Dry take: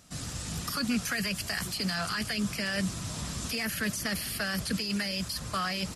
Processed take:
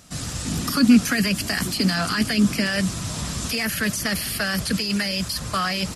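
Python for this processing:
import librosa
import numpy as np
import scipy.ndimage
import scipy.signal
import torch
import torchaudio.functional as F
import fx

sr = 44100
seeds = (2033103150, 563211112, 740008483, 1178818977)

y = fx.peak_eq(x, sr, hz=270.0, db=11.0, octaves=0.78, at=(0.45, 2.67))
y = y * 10.0 ** (7.5 / 20.0)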